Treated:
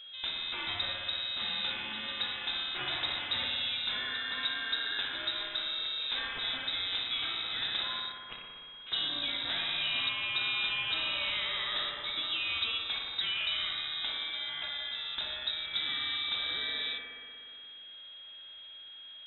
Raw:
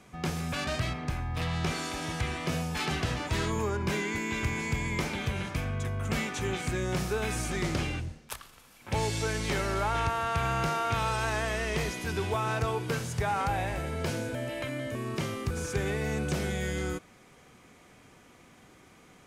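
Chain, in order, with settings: whistle 530 Hz -41 dBFS; frequency inversion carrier 3.8 kHz; bucket-brigade echo 60 ms, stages 1024, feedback 84%, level -5.5 dB; trim -5 dB

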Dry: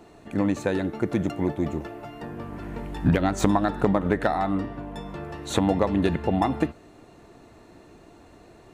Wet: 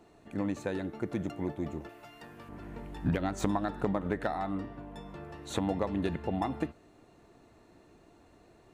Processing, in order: 1.89–2.49 s: tilt shelf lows -7 dB, about 1.2 kHz; trim -9 dB

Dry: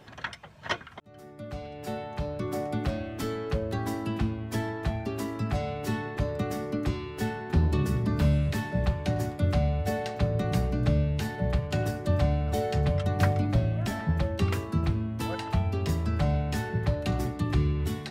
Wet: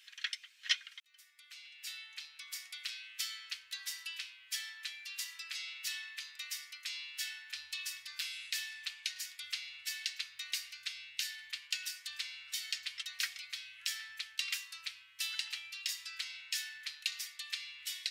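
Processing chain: inverse Chebyshev high-pass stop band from 650 Hz, stop band 60 dB; dynamic bell 4.9 kHz, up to +5 dB, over -56 dBFS, Q 1.2; trim +2.5 dB

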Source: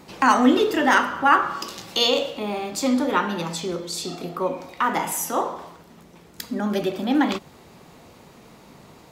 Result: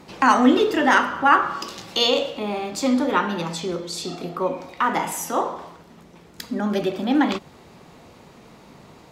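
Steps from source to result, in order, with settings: treble shelf 10 kHz -9.5 dB; trim +1 dB

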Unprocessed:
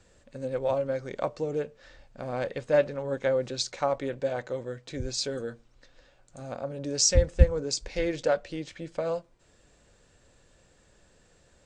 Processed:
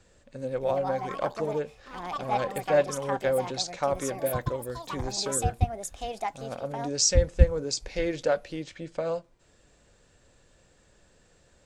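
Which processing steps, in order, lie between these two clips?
ever faster or slower copies 384 ms, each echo +6 st, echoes 2, each echo -6 dB

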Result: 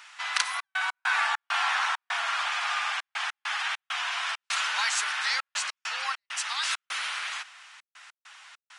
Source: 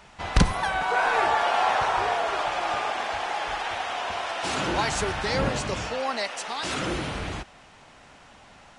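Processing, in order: high-pass 1.2 kHz 24 dB/octave; in parallel at -1.5 dB: compression, threshold -34 dBFS, peak gain reduction 12 dB; on the sum: trance gate "xxxx.x.xx.xxx.xx" 100 bpm -60 dB

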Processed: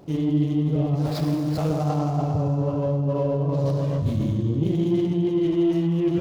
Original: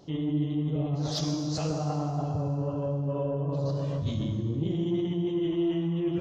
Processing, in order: median filter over 15 samples; 5.05–5.73 s: treble shelf 5.4 kHz -8 dB; trim +6.5 dB

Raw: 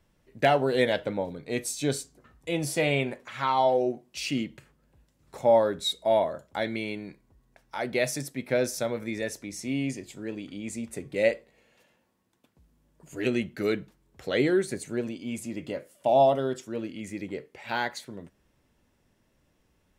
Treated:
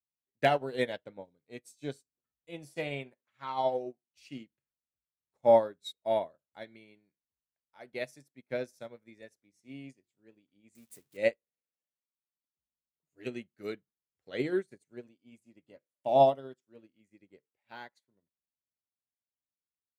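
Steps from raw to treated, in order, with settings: 10.75–11.17 s: zero-crossing glitches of -26.5 dBFS; high-pass 56 Hz; upward expansion 2.5:1, over -44 dBFS

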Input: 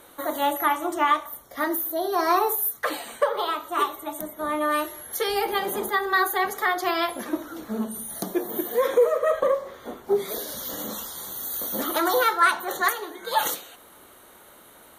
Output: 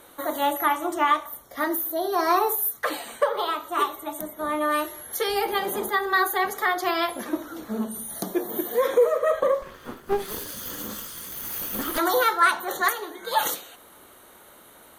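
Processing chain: 9.62–11.98 s: comb filter that takes the minimum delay 0.64 ms

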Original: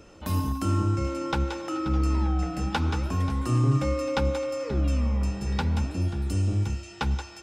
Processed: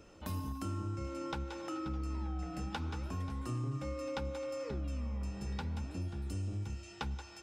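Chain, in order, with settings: compression 3:1, threshold -30 dBFS, peak gain reduction 9.5 dB; trim -7 dB

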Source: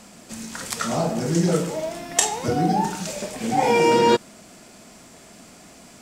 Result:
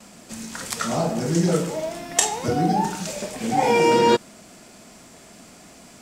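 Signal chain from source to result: gate with hold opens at -39 dBFS

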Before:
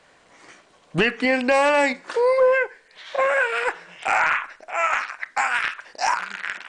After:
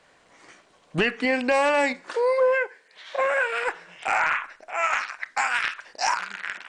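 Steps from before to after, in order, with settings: 2.13–3.21 s: Bessel high-pass 200 Hz, order 2; 4.82–6.27 s: dynamic bell 5 kHz, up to +5 dB, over -41 dBFS, Q 0.79; trim -3 dB

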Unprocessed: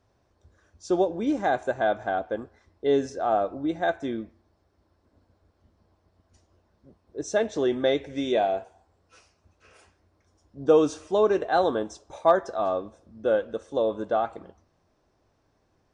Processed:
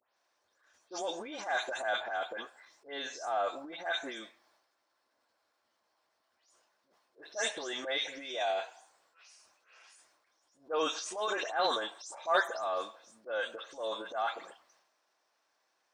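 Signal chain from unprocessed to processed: delay that grows with frequency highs late, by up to 163 ms; Bessel high-pass 1.3 kHz, order 2; transient shaper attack -9 dB, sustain +8 dB; trim +1.5 dB

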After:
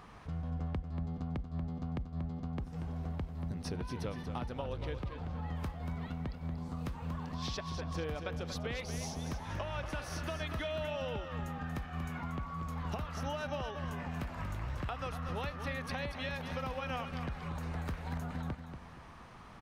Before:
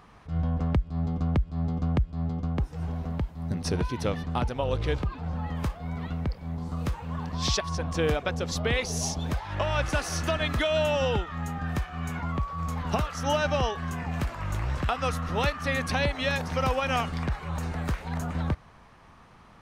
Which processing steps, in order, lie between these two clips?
dynamic bell 7.4 kHz, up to -8 dB, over -54 dBFS, Q 1.4; compression 4:1, threshold -38 dBFS, peak gain reduction 15 dB; on a send: feedback delay 235 ms, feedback 38%, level -8.5 dB

